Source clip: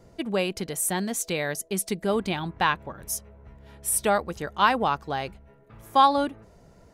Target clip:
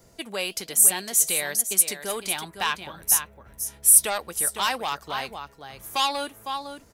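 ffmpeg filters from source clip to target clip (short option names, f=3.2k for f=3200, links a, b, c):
-filter_complex "[0:a]aecho=1:1:506:0.282,acrossover=split=380|2000[a][b][c];[a]acompressor=threshold=-39dB:ratio=6[d];[b]asoftclip=type=tanh:threshold=-21dB[e];[c]flanger=delay=4.8:depth=8.8:regen=-53:speed=1.2:shape=sinusoidal[f];[d][e][f]amix=inputs=3:normalize=0,crystalizer=i=7.5:c=0,volume=-4.5dB"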